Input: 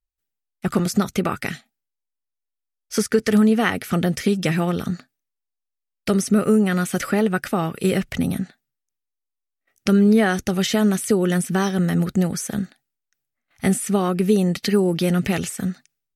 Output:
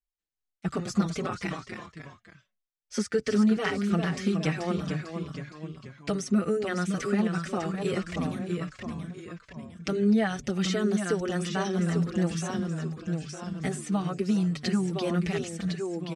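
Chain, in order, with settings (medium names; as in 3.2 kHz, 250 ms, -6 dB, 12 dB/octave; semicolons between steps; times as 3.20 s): low-pass 8.2 kHz 24 dB/octave; ever faster or slower copies 185 ms, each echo -1 st, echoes 3, each echo -6 dB; endless flanger 4.9 ms -2.4 Hz; trim -5.5 dB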